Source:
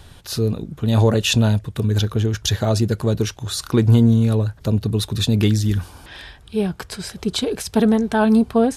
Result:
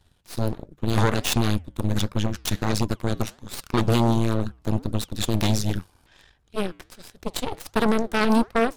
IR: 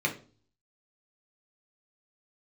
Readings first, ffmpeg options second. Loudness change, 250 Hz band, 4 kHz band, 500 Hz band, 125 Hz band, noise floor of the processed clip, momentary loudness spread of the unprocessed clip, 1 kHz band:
-6.0 dB, -6.5 dB, -5.5 dB, -5.5 dB, -8.0 dB, -62 dBFS, 11 LU, +0.5 dB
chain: -af "aeval=exprs='0.562*(cos(1*acos(clip(val(0)/0.562,-1,1)))-cos(1*PI/2))+0.2*(cos(3*acos(clip(val(0)/0.562,-1,1)))-cos(3*PI/2))+0.0447*(cos(4*acos(clip(val(0)/0.562,-1,1)))-cos(4*PI/2))+0.0126*(cos(5*acos(clip(val(0)/0.562,-1,1)))-cos(5*PI/2))+0.00355*(cos(8*acos(clip(val(0)/0.562,-1,1)))-cos(8*PI/2))':c=same,apsyclip=19.5dB,flanger=delay=2.4:depth=6.2:regen=-90:speed=1.4:shape=sinusoidal,volume=-7dB"

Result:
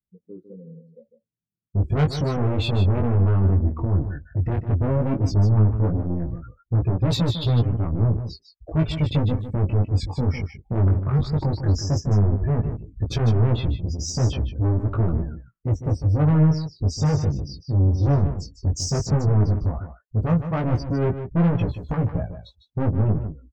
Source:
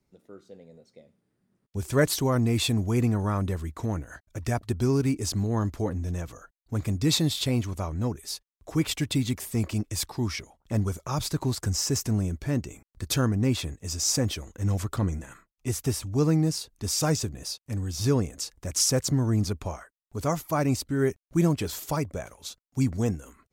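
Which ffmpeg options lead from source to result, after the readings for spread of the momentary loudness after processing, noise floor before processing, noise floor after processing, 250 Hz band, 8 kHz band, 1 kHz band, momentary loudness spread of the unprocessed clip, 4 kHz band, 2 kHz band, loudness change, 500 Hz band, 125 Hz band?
9 LU, -81 dBFS, -71 dBFS, +2.0 dB, -8.5 dB, +2.0 dB, 12 LU, -3.5 dB, -2.5 dB, +5.0 dB, +1.5 dB, +8.5 dB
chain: -af "aemphasis=mode=reproduction:type=75fm,afftdn=nr=34:nf=-37,bass=f=250:g=13,treble=f=4k:g=2,asoftclip=type=tanh:threshold=-21.5dB,flanger=delay=17:depth=4.2:speed=0.14,aecho=1:1:152:0.316,volume=7dB"

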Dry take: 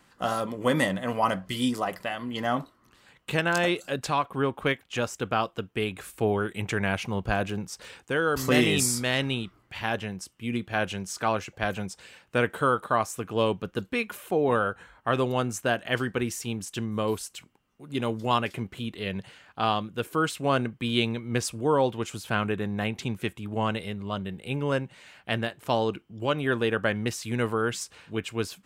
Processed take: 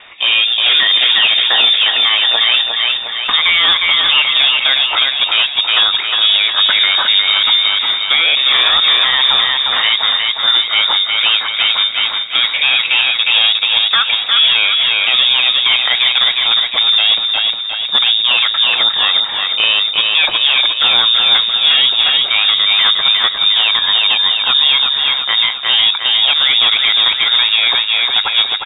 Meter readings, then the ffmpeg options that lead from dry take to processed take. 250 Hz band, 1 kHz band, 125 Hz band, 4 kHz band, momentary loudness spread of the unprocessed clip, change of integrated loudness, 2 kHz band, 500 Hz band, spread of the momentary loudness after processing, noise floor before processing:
under -10 dB, +7.0 dB, under -10 dB, +29.5 dB, 9 LU, +18.5 dB, +16.5 dB, -5.0 dB, 3 LU, -63 dBFS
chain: -filter_complex "[0:a]highshelf=f=2.6k:g=10.5,acrossover=split=2200[a][b];[a]asoftclip=type=tanh:threshold=-26dB[c];[b]acompressor=threshold=-46dB:ratio=6[d];[c][d]amix=inputs=2:normalize=0,aecho=1:1:357|714|1071|1428|1785|2142|2499:0.562|0.304|0.164|0.0885|0.0478|0.0258|0.0139,lowpass=f=3.2k:t=q:w=0.5098,lowpass=f=3.2k:t=q:w=0.6013,lowpass=f=3.2k:t=q:w=0.9,lowpass=f=3.2k:t=q:w=2.563,afreqshift=-3800,alimiter=level_in=21dB:limit=-1dB:release=50:level=0:latency=1,volume=-1dB"

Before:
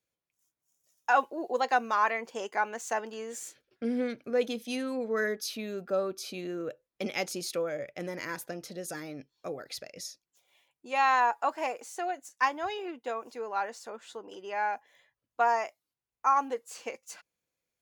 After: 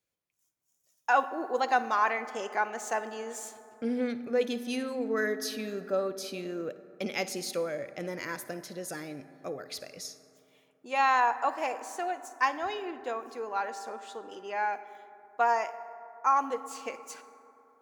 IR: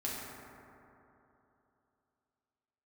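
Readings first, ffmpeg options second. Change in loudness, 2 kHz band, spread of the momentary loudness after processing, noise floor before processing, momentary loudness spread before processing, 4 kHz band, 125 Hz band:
0.0 dB, 0.0 dB, 15 LU, under -85 dBFS, 15 LU, 0.0 dB, 0.0 dB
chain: -filter_complex "[0:a]asplit=2[a][b];[1:a]atrim=start_sample=2205,adelay=55[c];[b][c]afir=irnorm=-1:irlink=0,volume=-16dB[d];[a][d]amix=inputs=2:normalize=0"

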